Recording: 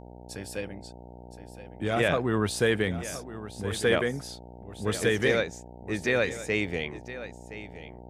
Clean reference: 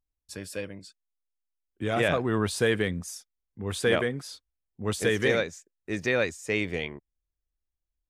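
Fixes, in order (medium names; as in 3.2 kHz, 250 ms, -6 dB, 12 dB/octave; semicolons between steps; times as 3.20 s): de-hum 60.6 Hz, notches 15; inverse comb 1018 ms -14 dB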